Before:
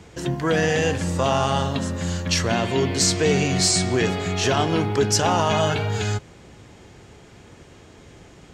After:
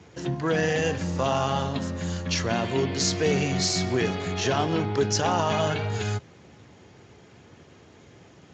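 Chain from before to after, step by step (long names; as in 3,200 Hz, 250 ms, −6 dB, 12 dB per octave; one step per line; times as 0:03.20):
level −4 dB
Speex 34 kbit/s 16,000 Hz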